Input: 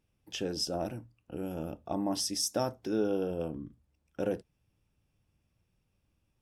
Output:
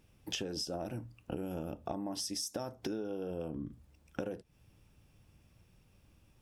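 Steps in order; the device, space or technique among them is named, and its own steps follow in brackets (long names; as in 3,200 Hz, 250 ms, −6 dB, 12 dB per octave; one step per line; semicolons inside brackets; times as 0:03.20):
serial compression, leveller first (downward compressor 2 to 1, threshold −36 dBFS, peak gain reduction 6.5 dB; downward compressor 10 to 1, threshold −46 dBFS, peak gain reduction 15.5 dB)
level +11 dB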